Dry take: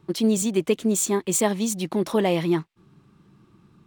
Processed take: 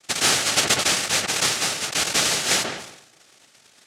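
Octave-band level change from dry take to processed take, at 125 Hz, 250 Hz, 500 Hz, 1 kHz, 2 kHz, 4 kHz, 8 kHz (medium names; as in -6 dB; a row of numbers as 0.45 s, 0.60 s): -6.5 dB, -12.5 dB, -7.5 dB, +4.0 dB, +13.0 dB, +15.0 dB, +7.0 dB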